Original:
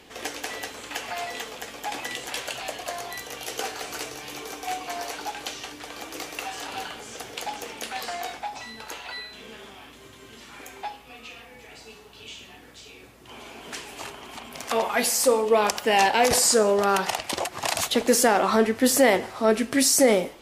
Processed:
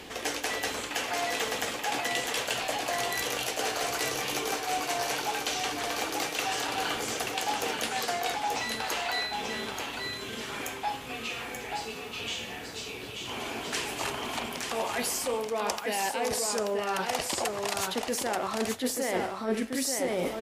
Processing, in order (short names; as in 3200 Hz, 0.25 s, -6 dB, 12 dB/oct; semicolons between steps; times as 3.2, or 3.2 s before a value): reverse; compressor 16:1, threshold -34 dBFS, peak gain reduction 21.5 dB; reverse; echo 0.883 s -4.5 dB; gain +6.5 dB